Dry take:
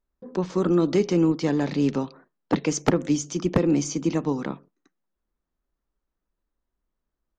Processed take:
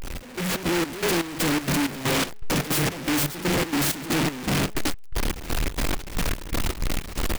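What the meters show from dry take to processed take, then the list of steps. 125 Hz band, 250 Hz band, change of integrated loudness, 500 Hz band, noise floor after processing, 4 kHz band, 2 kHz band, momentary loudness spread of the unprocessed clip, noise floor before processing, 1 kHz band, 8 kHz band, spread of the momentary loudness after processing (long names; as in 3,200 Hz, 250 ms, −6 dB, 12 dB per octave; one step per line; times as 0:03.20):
+1.0 dB, −3.0 dB, −1.5 dB, −3.0 dB, −35 dBFS, +12.0 dB, +11.0 dB, 10 LU, −84 dBFS, +4.5 dB, +6.0 dB, 7 LU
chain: sign of each sample alone
hum removal 212.4 Hz, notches 6
automatic gain control gain up to 9.5 dB
gate pattern "xx..xx.xx.." 161 BPM −12 dB
short delay modulated by noise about 1,600 Hz, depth 0.19 ms
level −5.5 dB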